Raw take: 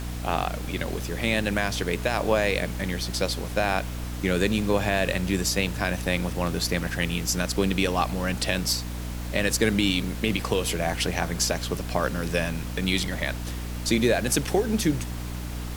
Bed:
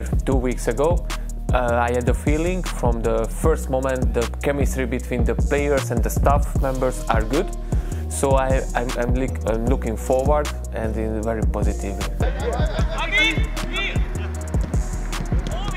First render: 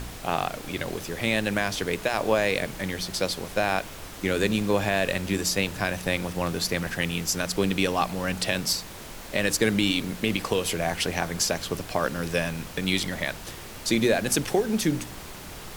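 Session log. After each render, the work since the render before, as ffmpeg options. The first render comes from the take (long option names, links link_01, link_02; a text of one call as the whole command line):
ffmpeg -i in.wav -af "bandreject=frequency=60:width_type=h:width=4,bandreject=frequency=120:width_type=h:width=4,bandreject=frequency=180:width_type=h:width=4,bandreject=frequency=240:width_type=h:width=4,bandreject=frequency=300:width_type=h:width=4" out.wav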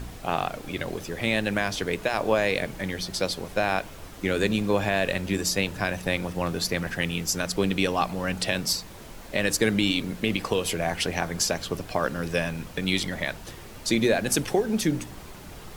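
ffmpeg -i in.wav -af "afftdn=noise_reduction=6:noise_floor=-41" out.wav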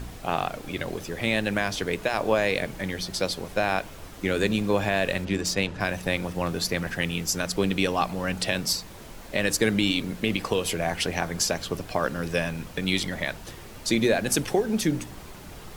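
ffmpeg -i in.wav -filter_complex "[0:a]asplit=3[link_01][link_02][link_03];[link_01]afade=type=out:start_time=5.24:duration=0.02[link_04];[link_02]adynamicsmooth=sensitivity=6.5:basefreq=4800,afade=type=in:start_time=5.24:duration=0.02,afade=type=out:start_time=5.79:duration=0.02[link_05];[link_03]afade=type=in:start_time=5.79:duration=0.02[link_06];[link_04][link_05][link_06]amix=inputs=3:normalize=0" out.wav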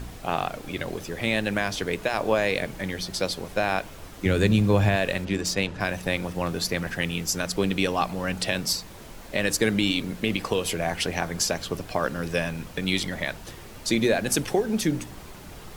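ffmpeg -i in.wav -filter_complex "[0:a]asettb=1/sr,asplit=3[link_01][link_02][link_03];[link_01]atrim=end=4.254[link_04];[link_02]atrim=start=4.25:end=4.96,asetpts=PTS-STARTPTS,afade=type=in:duration=0.004:curve=qsin,afade=type=out:start_time=0.706:duration=0.004:curve=qsin,equalizer=frequency=99:width=0.85:gain=12[link_05];[link_03]atrim=start=4.956[link_06];[link_04][link_05]acrossfade=duration=0.004:curve1=hsin:curve2=qsin[link_07];[link_07][link_06]acrossfade=duration=0.004:curve1=qsin:curve2=hsin" out.wav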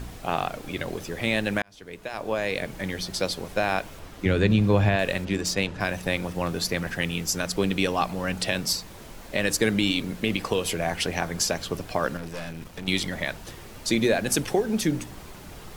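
ffmpeg -i in.wav -filter_complex "[0:a]asettb=1/sr,asplit=3[link_01][link_02][link_03];[link_01]atrim=end=3.994[link_04];[link_02]atrim=start=3.99:end=4.99,asetpts=PTS-STARTPTS,afade=type=in:duration=0.004:curve=qsin,afade=type=out:start_time=0.996:duration=0.004:curve=qsin,acrossover=split=4900[link_05][link_06];[link_06]acompressor=threshold=-54dB:ratio=4:attack=1:release=60[link_07];[link_05][link_07]amix=inputs=2:normalize=0[link_08];[link_03]atrim=start=4.986[link_09];[link_04][link_08]acrossfade=duration=0.004:curve1=hsin:curve2=qsin[link_10];[link_10][link_09]acrossfade=duration=0.004:curve1=qsin:curve2=hsin,asettb=1/sr,asplit=3[link_11][link_12][link_13];[link_11]atrim=end=12.174[link_14];[link_12]atrim=start=12.17:end=12.88,asetpts=PTS-STARTPTS,afade=type=in:duration=0.004:curve=qsin,afade=type=out:start_time=0.706:duration=0.004:curve=qsin,aeval=exprs='(tanh(39.8*val(0)+0.65)-tanh(0.65))/39.8':channel_layout=same[link_15];[link_13]atrim=start=12.876[link_16];[link_14][link_15]acrossfade=duration=0.004:curve1=hsin:curve2=qsin[link_17];[link_17][link_16]acrossfade=duration=0.004:curve1=qsin:curve2=hsin,asplit=2[link_18][link_19];[link_18]atrim=end=1.62,asetpts=PTS-STARTPTS,afade=type=out:start_time=1.616:duration=0.004:curve=hsin[link_20];[link_19]atrim=start=1.62,asetpts=PTS-STARTPTS,afade=type=in:duration=1.25[link_21];[link_20][link_21]concat=n=2:v=0:a=1" out.wav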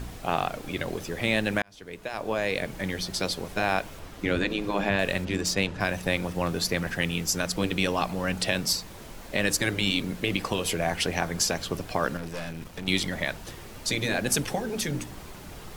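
ffmpeg -i in.wav -af "afftfilt=real='re*lt(hypot(re,im),0.501)':imag='im*lt(hypot(re,im),0.501)':win_size=1024:overlap=0.75" out.wav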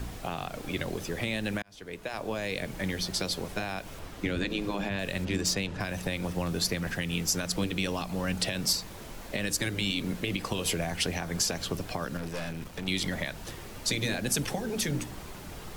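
ffmpeg -i in.wav -filter_complex "[0:a]alimiter=limit=-15dB:level=0:latency=1:release=111,acrossover=split=270|3000[link_01][link_02][link_03];[link_02]acompressor=threshold=-32dB:ratio=6[link_04];[link_01][link_04][link_03]amix=inputs=3:normalize=0" out.wav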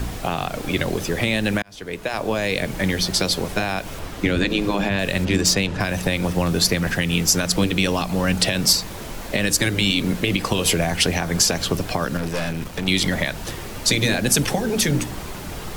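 ffmpeg -i in.wav -af "volume=10.5dB" out.wav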